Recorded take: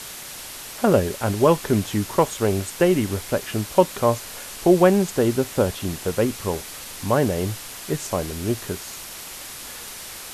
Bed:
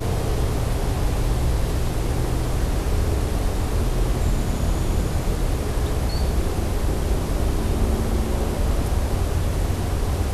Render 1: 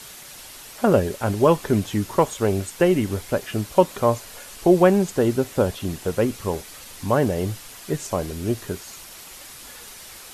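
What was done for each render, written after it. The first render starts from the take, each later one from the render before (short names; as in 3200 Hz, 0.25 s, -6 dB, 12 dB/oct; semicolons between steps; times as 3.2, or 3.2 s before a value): denoiser 6 dB, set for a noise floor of -37 dBFS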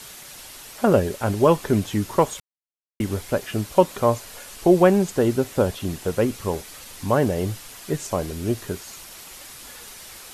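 2.4–3 mute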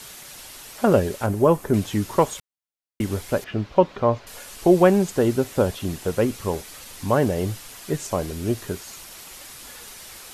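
1.26–1.74 bell 3800 Hz -10.5 dB 2 oct; 3.44–4.27 air absorption 230 m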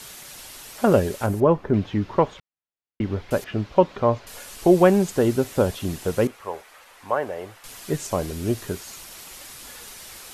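1.4–3.31 air absorption 260 m; 6.27–7.64 three-band isolator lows -20 dB, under 500 Hz, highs -15 dB, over 2400 Hz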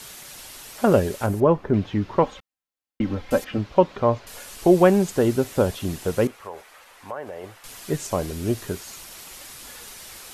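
2.23–3.58 comb 3.8 ms; 6.38–7.44 compressor 2.5:1, threshold -32 dBFS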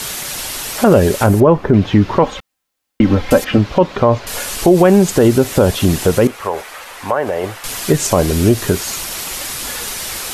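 in parallel at +2 dB: compressor, threshold -26 dBFS, peak gain reduction 15 dB; on the sum: maximiser +9.5 dB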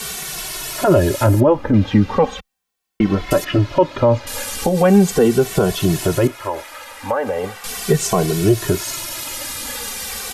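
endless flanger 2.2 ms -0.38 Hz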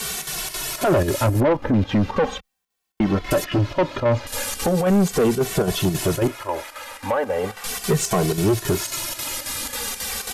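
chopper 3.7 Hz, depth 60%, duty 80%; soft clip -13 dBFS, distortion -10 dB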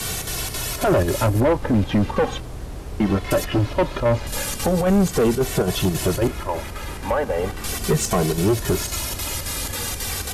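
add bed -10.5 dB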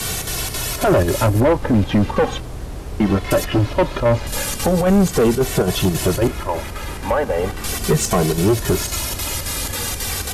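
gain +3 dB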